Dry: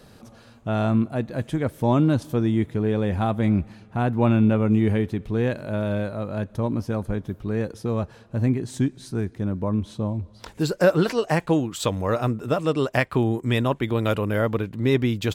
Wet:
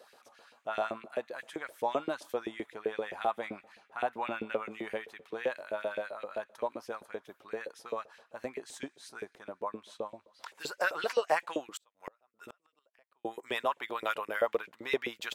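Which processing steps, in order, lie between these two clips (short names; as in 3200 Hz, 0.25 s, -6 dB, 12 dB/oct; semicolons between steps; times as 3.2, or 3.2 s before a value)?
LFO high-pass saw up 7.7 Hz 430–2600 Hz; 11.73–13.25 flipped gate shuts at -22 dBFS, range -39 dB; gain -8 dB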